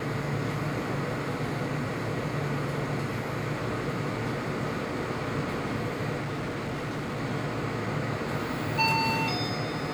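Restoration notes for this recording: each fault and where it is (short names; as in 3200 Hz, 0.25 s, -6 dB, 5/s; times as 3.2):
6.2–7.2 clipped -29 dBFS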